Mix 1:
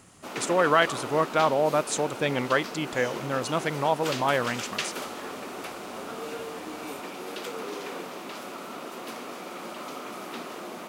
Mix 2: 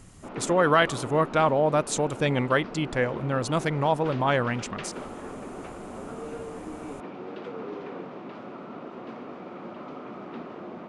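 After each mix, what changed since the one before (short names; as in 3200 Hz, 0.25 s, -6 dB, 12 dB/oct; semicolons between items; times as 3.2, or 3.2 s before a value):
background: add tape spacing loss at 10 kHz 40 dB; master: remove HPF 270 Hz 6 dB/oct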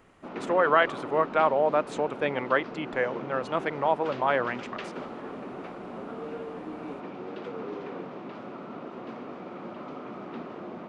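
speech: add three-band isolator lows -16 dB, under 340 Hz, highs -21 dB, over 3000 Hz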